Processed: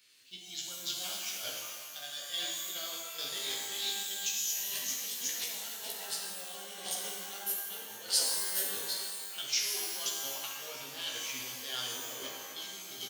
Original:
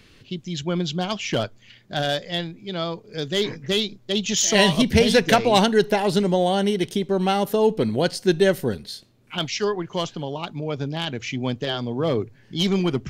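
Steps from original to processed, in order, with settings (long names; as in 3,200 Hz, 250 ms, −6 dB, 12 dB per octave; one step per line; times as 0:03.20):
feedback delay that plays each chunk backwards 203 ms, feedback 70%, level −12 dB
noise gate −27 dBFS, range −12 dB
compressor whose output falls as the input rises −29 dBFS, ratio −1
sample-and-hold tremolo 3.5 Hz
first difference
double-tracking delay 15 ms −3 dB
reverb with rising layers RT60 1.4 s, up +12 semitones, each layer −2 dB, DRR −1 dB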